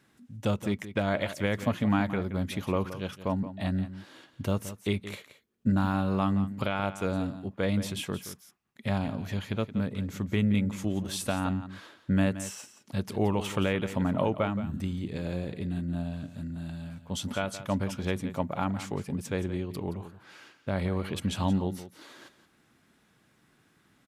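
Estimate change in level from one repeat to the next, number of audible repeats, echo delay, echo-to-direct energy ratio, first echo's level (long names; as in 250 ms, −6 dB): repeats not evenly spaced, 1, 173 ms, −13.0 dB, −13.0 dB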